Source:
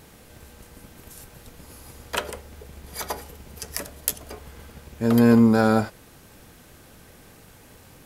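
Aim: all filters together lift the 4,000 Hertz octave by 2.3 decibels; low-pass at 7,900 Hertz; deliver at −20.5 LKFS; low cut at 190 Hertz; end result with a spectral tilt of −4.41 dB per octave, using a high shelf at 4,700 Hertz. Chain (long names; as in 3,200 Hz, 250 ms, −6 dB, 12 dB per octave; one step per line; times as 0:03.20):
high-pass filter 190 Hz
low-pass filter 7,900 Hz
parametric band 4,000 Hz +6.5 dB
high-shelf EQ 4,700 Hz −6 dB
level +3 dB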